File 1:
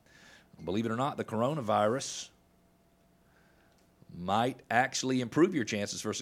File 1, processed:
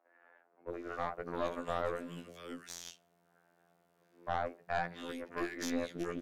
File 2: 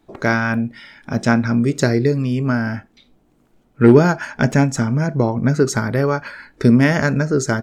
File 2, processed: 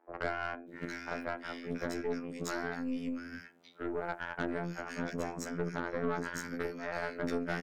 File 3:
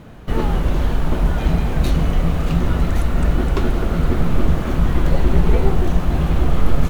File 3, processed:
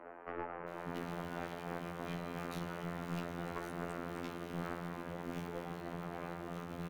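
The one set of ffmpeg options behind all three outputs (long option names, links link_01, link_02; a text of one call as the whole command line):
ffmpeg -i in.wav -filter_complex "[0:a]acompressor=threshold=-24dB:ratio=12,highpass=42,highshelf=frequency=3700:gain=10,afftfilt=real='hypot(re,im)*cos(PI*b)':imag='0':win_size=2048:overlap=0.75,acrossover=split=180 2500:gain=0.0891 1 0.224[link_01][link_02][link_03];[link_01][link_02][link_03]amix=inputs=3:normalize=0,bandreject=frequency=60:width_type=h:width=6,bandreject=frequency=120:width_type=h:width=6,bandreject=frequency=180:width_type=h:width=6,bandreject=frequency=240:width_type=h:width=6,bandreject=frequency=300:width_type=h:width=6,bandreject=frequency=360:width_type=h:width=6,bandreject=frequency=420:width_type=h:width=6,bandreject=frequency=480:width_type=h:width=6,bandreject=frequency=540:width_type=h:width=6,acrossover=split=330|1900[link_04][link_05][link_06];[link_04]adelay=590[link_07];[link_06]adelay=680[link_08];[link_07][link_05][link_08]amix=inputs=3:normalize=0,aeval=exprs='(tanh(28.2*val(0)+0.7)-tanh(0.7))/28.2':channel_layout=same,volume=4dB" out.wav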